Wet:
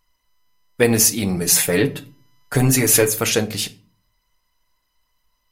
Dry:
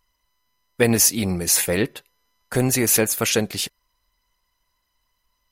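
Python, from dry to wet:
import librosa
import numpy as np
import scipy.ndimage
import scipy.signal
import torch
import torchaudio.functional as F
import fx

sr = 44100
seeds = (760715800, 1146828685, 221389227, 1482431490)

y = fx.comb(x, sr, ms=7.0, depth=0.73, at=(1.36, 3.07))
y = fx.room_shoebox(y, sr, seeds[0], volume_m3=280.0, walls='furnished', distance_m=0.55)
y = F.gain(torch.from_numpy(y), 1.0).numpy()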